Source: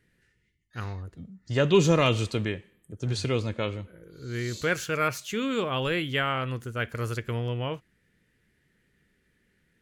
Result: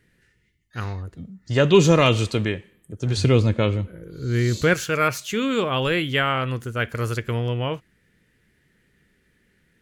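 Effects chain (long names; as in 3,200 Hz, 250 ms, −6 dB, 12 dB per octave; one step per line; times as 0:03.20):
0:03.17–0:04.74: low-shelf EQ 350 Hz +7.5 dB
level +5.5 dB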